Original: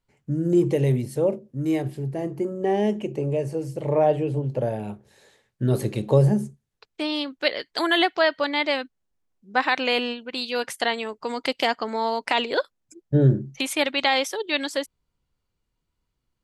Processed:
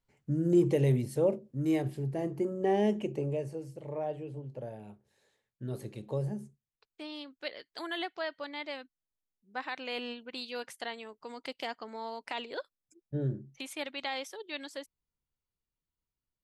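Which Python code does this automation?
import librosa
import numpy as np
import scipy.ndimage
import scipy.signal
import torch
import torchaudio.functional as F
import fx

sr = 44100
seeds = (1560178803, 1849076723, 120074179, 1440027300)

y = fx.gain(x, sr, db=fx.line((3.09, -5.0), (3.9, -16.0), (9.86, -16.0), (10.18, -9.0), (10.85, -15.0)))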